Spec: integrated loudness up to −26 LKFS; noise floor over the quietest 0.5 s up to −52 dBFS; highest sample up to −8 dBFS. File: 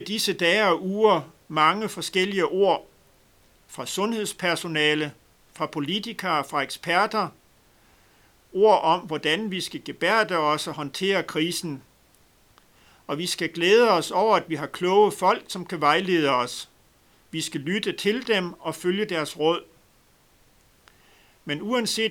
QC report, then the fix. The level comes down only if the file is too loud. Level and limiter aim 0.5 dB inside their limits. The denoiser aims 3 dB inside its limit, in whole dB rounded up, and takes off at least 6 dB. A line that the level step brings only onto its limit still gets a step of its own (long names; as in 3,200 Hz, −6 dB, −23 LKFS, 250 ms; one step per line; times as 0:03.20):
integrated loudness −23.5 LKFS: out of spec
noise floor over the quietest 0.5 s −60 dBFS: in spec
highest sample −4.5 dBFS: out of spec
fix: level −3 dB
brickwall limiter −8.5 dBFS